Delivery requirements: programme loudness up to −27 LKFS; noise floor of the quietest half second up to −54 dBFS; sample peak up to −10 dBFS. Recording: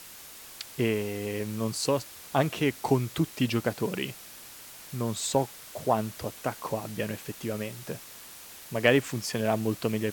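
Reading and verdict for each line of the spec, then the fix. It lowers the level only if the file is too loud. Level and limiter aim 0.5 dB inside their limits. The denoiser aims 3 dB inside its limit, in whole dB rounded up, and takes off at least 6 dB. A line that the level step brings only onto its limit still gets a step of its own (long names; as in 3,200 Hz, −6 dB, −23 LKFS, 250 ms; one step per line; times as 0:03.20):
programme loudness −29.5 LKFS: in spec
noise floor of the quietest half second −47 dBFS: out of spec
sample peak −7.5 dBFS: out of spec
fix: broadband denoise 10 dB, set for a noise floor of −47 dBFS
brickwall limiter −10.5 dBFS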